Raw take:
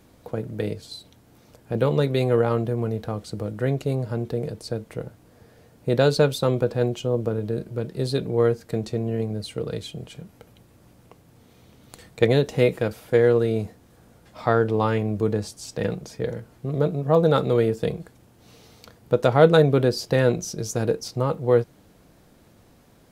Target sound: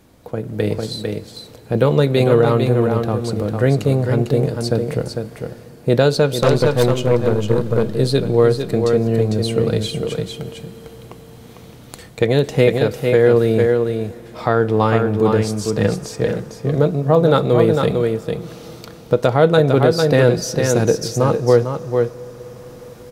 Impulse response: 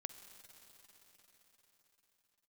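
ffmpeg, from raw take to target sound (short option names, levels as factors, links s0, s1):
-filter_complex "[0:a]aecho=1:1:451:0.501,alimiter=limit=0.355:level=0:latency=1:release=344,asettb=1/sr,asplit=3[s0][s1][s2];[s0]atrim=end=6.424[s3];[s1]atrim=start=6.42:end=7.83,asetpts=PTS-STARTPTS,afade=t=in:d=0.004:c=qsin,afade=t=out:st=1.406:d=0.004:c=qsin,aeval=exprs='0.355*(cos(1*acos(clip(val(0)/0.355,-1,1)))-cos(1*PI/2))+0.0562*(cos(5*acos(clip(val(0)/0.355,-1,1)))-cos(5*PI/2))+0.0398*(cos(7*acos(clip(val(0)/0.355,-1,1)))-cos(7*PI/2))+0.0251*(cos(8*acos(clip(val(0)/0.355,-1,1)))-cos(8*PI/2))':c=same[s4];[s2]atrim=start=7.826[s5];[s3][s4]acrossfade=d=0.004:c1=hsin:c2=qsin[s6];[s6][s5]acrossfade=d=0.004:c1=qsin:c2=hsin,asplit=2[s7][s8];[1:a]atrim=start_sample=2205,asetrate=38367,aresample=44100[s9];[s8][s9]afir=irnorm=-1:irlink=0,volume=0.631[s10];[s7][s10]amix=inputs=2:normalize=0,dynaudnorm=f=390:g=3:m=2.51"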